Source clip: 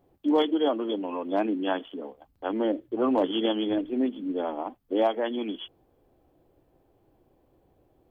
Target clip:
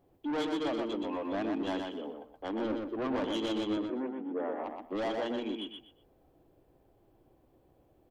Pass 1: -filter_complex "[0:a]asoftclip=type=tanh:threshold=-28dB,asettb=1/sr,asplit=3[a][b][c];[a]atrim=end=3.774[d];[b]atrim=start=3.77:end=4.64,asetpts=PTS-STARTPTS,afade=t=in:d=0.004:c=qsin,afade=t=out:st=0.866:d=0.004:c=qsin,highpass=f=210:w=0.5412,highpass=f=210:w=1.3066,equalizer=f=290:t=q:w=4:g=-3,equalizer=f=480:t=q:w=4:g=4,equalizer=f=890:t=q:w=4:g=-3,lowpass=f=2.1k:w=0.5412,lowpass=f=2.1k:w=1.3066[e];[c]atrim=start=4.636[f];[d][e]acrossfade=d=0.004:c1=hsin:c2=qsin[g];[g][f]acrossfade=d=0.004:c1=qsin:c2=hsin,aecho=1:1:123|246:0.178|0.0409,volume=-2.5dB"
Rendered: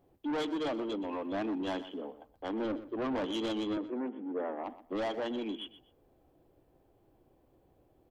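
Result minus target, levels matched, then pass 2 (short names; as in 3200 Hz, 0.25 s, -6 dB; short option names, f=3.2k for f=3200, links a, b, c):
echo-to-direct -10.5 dB
-filter_complex "[0:a]asoftclip=type=tanh:threshold=-28dB,asettb=1/sr,asplit=3[a][b][c];[a]atrim=end=3.774[d];[b]atrim=start=3.77:end=4.64,asetpts=PTS-STARTPTS,afade=t=in:d=0.004:c=qsin,afade=t=out:st=0.866:d=0.004:c=qsin,highpass=f=210:w=0.5412,highpass=f=210:w=1.3066,equalizer=f=290:t=q:w=4:g=-3,equalizer=f=480:t=q:w=4:g=4,equalizer=f=890:t=q:w=4:g=-3,lowpass=f=2.1k:w=0.5412,lowpass=f=2.1k:w=1.3066[e];[c]atrim=start=4.636[f];[d][e]acrossfade=d=0.004:c1=hsin:c2=qsin[g];[g][f]acrossfade=d=0.004:c1=qsin:c2=hsin,aecho=1:1:123|246|369:0.596|0.137|0.0315,volume=-2.5dB"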